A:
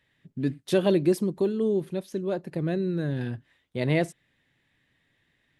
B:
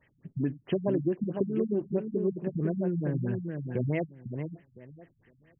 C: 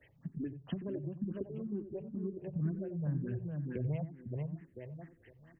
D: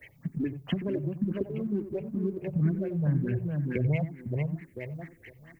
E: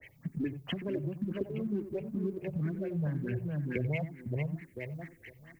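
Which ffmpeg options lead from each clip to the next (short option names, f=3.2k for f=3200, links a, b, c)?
-filter_complex "[0:a]acompressor=threshold=-33dB:ratio=4,asplit=2[a][b];[b]adelay=505,lowpass=f=2.4k:p=1,volume=-5.5dB,asplit=2[c][d];[d]adelay=505,lowpass=f=2.4k:p=1,volume=0.19,asplit=2[e][f];[f]adelay=505,lowpass=f=2.4k:p=1,volume=0.19[g];[a][c][e][g]amix=inputs=4:normalize=0,afftfilt=real='re*lt(b*sr/1024,200*pow(3300/200,0.5+0.5*sin(2*PI*4.6*pts/sr)))':imag='im*lt(b*sr/1024,200*pow(3300/200,0.5+0.5*sin(2*PI*4.6*pts/sr)))':win_size=1024:overlap=0.75,volume=6dB"
-filter_complex "[0:a]acrossover=split=120[a][b];[b]acompressor=threshold=-44dB:ratio=4[c];[a][c]amix=inputs=2:normalize=0,asplit=2[d][e];[e]adelay=90,lowpass=f=1k:p=1,volume=-10.5dB,asplit=2[f][g];[g]adelay=90,lowpass=f=1k:p=1,volume=0.21,asplit=2[h][i];[i]adelay=90,lowpass=f=1k:p=1,volume=0.21[j];[d][f][h][j]amix=inputs=4:normalize=0,asplit=2[k][l];[l]afreqshift=2.1[m];[k][m]amix=inputs=2:normalize=1,volume=5dB"
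-filter_complex "[0:a]equalizer=f=2.2k:t=o:w=0.33:g=12,crystalizer=i=2:c=0,asplit=2[a][b];[b]aeval=exprs='sgn(val(0))*max(abs(val(0))-0.00211,0)':c=same,volume=-11.5dB[c];[a][c]amix=inputs=2:normalize=0,volume=6.5dB"
-filter_complex "[0:a]acrossover=split=340[a][b];[a]alimiter=level_in=1dB:limit=-24dB:level=0:latency=1:release=339,volume=-1dB[c];[c][b]amix=inputs=2:normalize=0,adynamicequalizer=threshold=0.00282:dfrequency=1800:dqfactor=0.7:tfrequency=1800:tqfactor=0.7:attack=5:release=100:ratio=0.375:range=2:mode=boostabove:tftype=highshelf,volume=-2.5dB"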